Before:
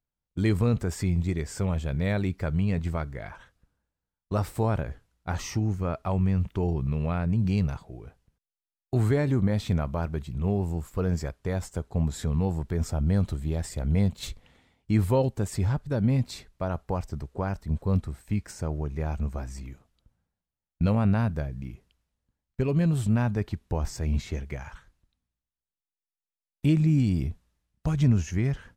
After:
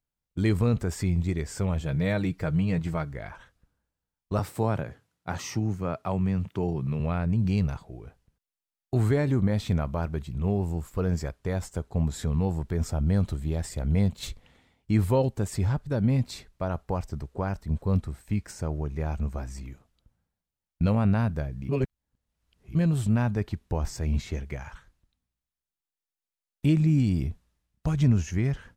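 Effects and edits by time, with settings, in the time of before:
1.8–3.13 comb 6.4 ms, depth 54%
4.39–7 HPF 100 Hz 24 dB/oct
21.69–22.75 reverse

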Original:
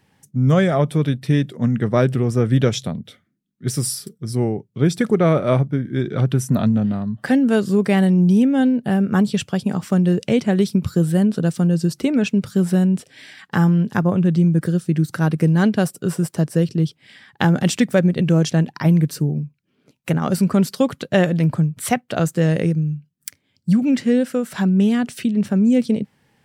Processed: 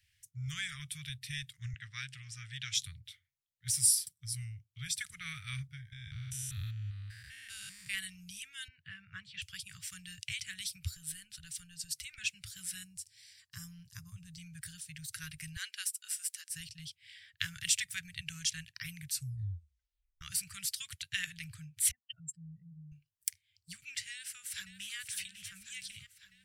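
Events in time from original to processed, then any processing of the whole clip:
1.73–2.75 BPF 210–6400 Hz
5.92–7.94 stepped spectrum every 0.2 s
8.68–9.42 BPF 100–2300 Hz
10.94–12.18 compressor, threshold -19 dBFS
12.83–14.38 band shelf 2200 Hz -13 dB
15.56–16.5 steep high-pass 280 Hz 96 dB/oct
19.12 tape stop 1.09 s
21.91–22.92 spectral contrast raised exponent 3.9
24.11–24.96 echo throw 0.55 s, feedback 70%, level -9.5 dB
whole clip: dynamic EQ 9400 Hz, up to +7 dB, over -49 dBFS, Q 1; inverse Chebyshev band-stop 230–790 Hz, stop band 60 dB; gain -6.5 dB

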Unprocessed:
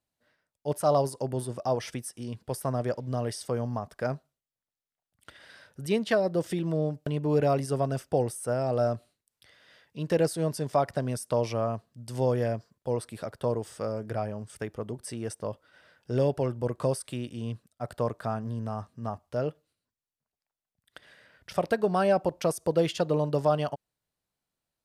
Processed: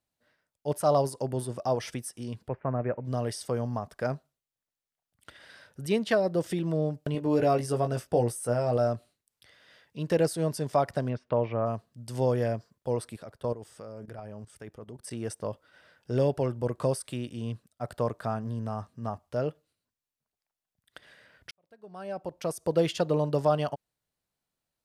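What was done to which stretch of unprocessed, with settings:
2.48–3.05 Chebyshev low-pass 2500 Hz, order 5
7.13–8.77 doubler 17 ms -6 dB
11.08–11.65 LPF 3500 Hz -> 2100 Hz 24 dB/oct
13.16–15.11 level quantiser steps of 14 dB
21.51–22.78 fade in quadratic

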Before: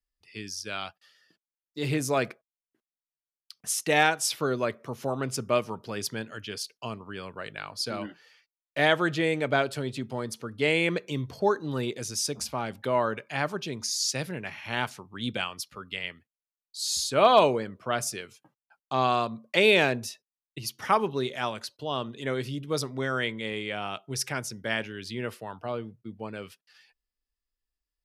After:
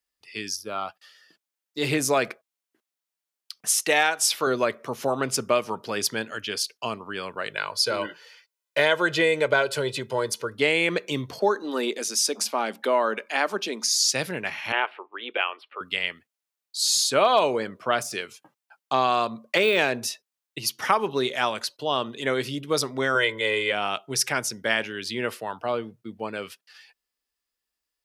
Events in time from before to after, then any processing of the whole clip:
0.56–0.89 spectral gain 1400–9900 Hz -14 dB
3.81–4.47 low shelf 230 Hz -10.5 dB
7.51–10.55 comb 2 ms
11.39–13.9 elliptic high-pass 200 Hz
14.72–15.81 elliptic band-pass 360–2800 Hz
18–19.79 de-esser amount 70%
23.15–23.72 comb 2 ms, depth 82%
whole clip: HPF 380 Hz 6 dB/oct; compressor 3:1, threshold -26 dBFS; gain +8 dB

